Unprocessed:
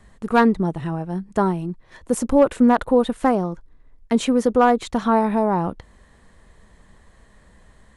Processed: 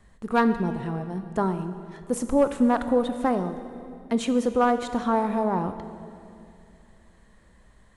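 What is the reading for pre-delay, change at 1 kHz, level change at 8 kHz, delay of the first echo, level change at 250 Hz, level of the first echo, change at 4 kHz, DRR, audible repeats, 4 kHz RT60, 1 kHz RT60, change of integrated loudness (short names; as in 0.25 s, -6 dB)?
17 ms, -5.0 dB, -5.0 dB, none, -5.0 dB, none, -5.0 dB, 9.5 dB, none, 2.1 s, 2.3 s, -5.0 dB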